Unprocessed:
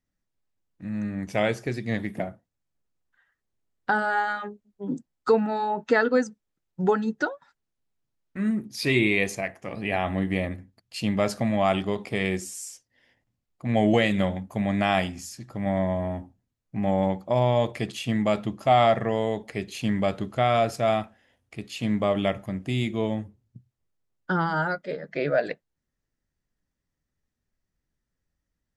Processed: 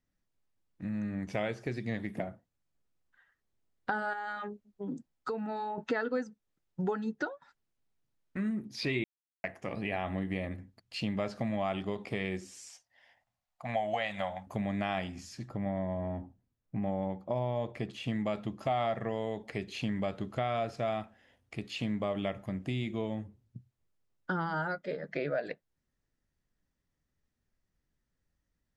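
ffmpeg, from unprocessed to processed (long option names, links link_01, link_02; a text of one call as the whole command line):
ffmpeg -i in.wav -filter_complex "[0:a]asettb=1/sr,asplit=3[link_01][link_02][link_03];[link_01]atrim=end=4.134[link_04];[link_02]atrim=start=4.13:end=5.78,asetpts=PTS-STARTPTS,afade=type=in:duration=0.004:curve=qsin,afade=type=out:start_time=1.646:duration=0.004:curve=qsin,acompressor=threshold=-36dB:ratio=2:attack=3.2:release=140:knee=1:detection=peak[link_05];[link_03]atrim=start=5.776[link_06];[link_04][link_05]acrossfade=duration=0.004:curve1=hsin:curve2=qsin[link_07];[link_07][link_06]acrossfade=duration=0.004:curve1=qsin:curve2=hsin,asettb=1/sr,asplit=3[link_08][link_09][link_10];[link_08]atrim=end=12.694[link_11];[link_09]atrim=start=12.69:end=14.47,asetpts=PTS-STARTPTS,afade=type=in:duration=0.004:curve=qsin,afade=type=out:start_time=1.776:duration=0.004:curve=qsin,lowshelf=frequency=520:width_type=q:width=3:gain=-10.5[link_12];[link_10]atrim=start=14.466[link_13];[link_11][link_12]acrossfade=duration=0.004:curve1=hsin:curve2=qsin[link_14];[link_14][link_13]acrossfade=duration=0.004:curve1=qsin:curve2=hsin,asettb=1/sr,asplit=3[link_15][link_16][link_17];[link_15]atrim=end=15.484[link_18];[link_16]atrim=start=15.48:end=18.08,asetpts=PTS-STARTPTS,afade=type=in:duration=0.004:curve=qsin,afade=type=out:start_time=2.596:duration=0.004:curve=qsin,highshelf=frequency=2200:gain=-8[link_19];[link_17]atrim=start=18.076[link_20];[link_18][link_19]acrossfade=duration=0.004:curve1=hsin:curve2=qsin[link_21];[link_21][link_20]acrossfade=duration=0.004:curve1=qsin:curve2=hsin,asplit=3[link_22][link_23][link_24];[link_22]atrim=end=9.04,asetpts=PTS-STARTPTS,afade=type=out:start_time=9.036:duration=0.004:curve=hsin[link_25];[link_23]atrim=start=9.04:end=9.44,asetpts=PTS-STARTPTS,volume=0[link_26];[link_24]atrim=start=9.44,asetpts=PTS-STARTPTS,afade=type=in:duration=0.004:curve=hsin[link_27];[link_25][link_26][link_27]concat=n=3:v=0:a=1,acrossover=split=5200[link_28][link_29];[link_29]acompressor=threshold=-53dB:ratio=4:attack=1:release=60[link_30];[link_28][link_30]amix=inputs=2:normalize=0,highshelf=frequency=9100:gain=-7.5,acompressor=threshold=-34dB:ratio=2.5" out.wav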